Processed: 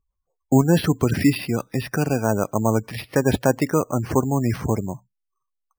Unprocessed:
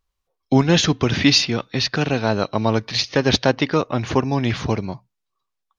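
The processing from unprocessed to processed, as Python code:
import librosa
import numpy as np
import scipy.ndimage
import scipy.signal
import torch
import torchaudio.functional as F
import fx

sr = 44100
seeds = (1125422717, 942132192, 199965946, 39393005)

y = fx.air_absorb(x, sr, metres=360.0)
y = fx.spec_gate(y, sr, threshold_db=-25, keep='strong')
y = np.repeat(scipy.signal.resample_poly(y, 1, 6), 6)[:len(y)]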